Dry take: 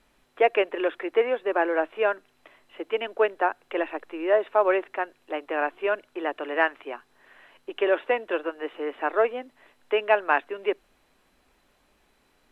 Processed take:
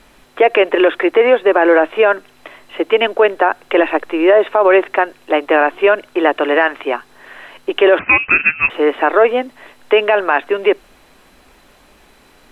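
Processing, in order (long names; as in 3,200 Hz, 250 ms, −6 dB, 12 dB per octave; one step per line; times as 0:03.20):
0:07.99–0:08.70: voice inversion scrambler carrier 3,000 Hz
boost into a limiter +18 dB
level −1 dB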